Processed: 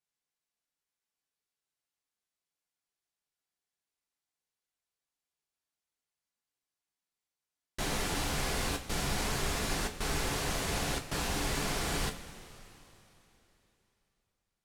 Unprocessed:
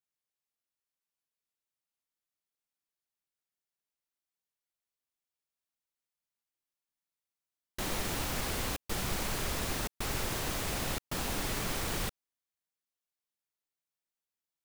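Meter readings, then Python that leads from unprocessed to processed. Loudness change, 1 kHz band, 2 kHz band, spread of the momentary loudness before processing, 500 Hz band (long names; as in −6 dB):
+1.0 dB, +2.5 dB, +2.5 dB, 2 LU, +2.0 dB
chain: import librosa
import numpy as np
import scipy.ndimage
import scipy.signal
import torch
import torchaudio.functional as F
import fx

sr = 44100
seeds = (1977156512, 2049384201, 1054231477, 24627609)

y = scipy.signal.sosfilt(scipy.signal.butter(2, 11000.0, 'lowpass', fs=sr, output='sos'), x)
y = fx.rev_double_slope(y, sr, seeds[0], early_s=0.23, late_s=3.4, knee_db=-19, drr_db=2.0)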